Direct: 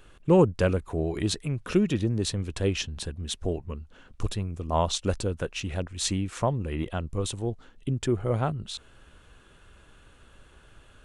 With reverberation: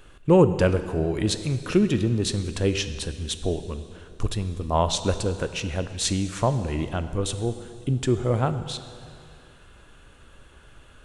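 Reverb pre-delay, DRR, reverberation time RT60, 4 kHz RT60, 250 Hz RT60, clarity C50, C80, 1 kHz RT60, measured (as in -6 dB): 5 ms, 10.0 dB, 2.4 s, 2.2 s, 2.4 s, 11.0 dB, 12.0 dB, 2.4 s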